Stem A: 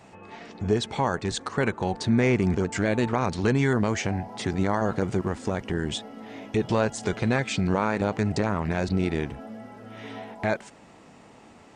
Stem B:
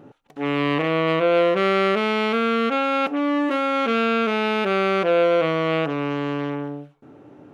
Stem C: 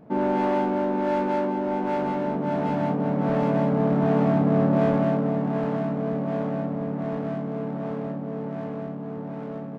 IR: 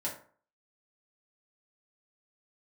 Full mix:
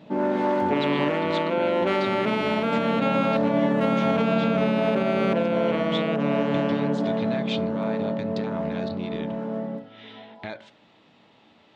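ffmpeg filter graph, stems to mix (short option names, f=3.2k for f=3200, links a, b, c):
-filter_complex "[0:a]acompressor=threshold=-24dB:ratio=6,lowpass=f=3.6k:t=q:w=4.2,volume=-9dB,asplit=2[a][b];[b]volume=-11.5dB[c];[1:a]bandreject=f=1.2k:w=12,acompressor=threshold=-22dB:ratio=2,adelay=300,volume=1.5dB[d];[2:a]volume=-4dB,asplit=2[e][f];[f]volume=-3.5dB[g];[3:a]atrim=start_sample=2205[h];[c][g]amix=inputs=2:normalize=0[i];[i][h]afir=irnorm=-1:irlink=0[j];[a][d][e][j]amix=inputs=4:normalize=0,highpass=94,alimiter=limit=-13dB:level=0:latency=1:release=226"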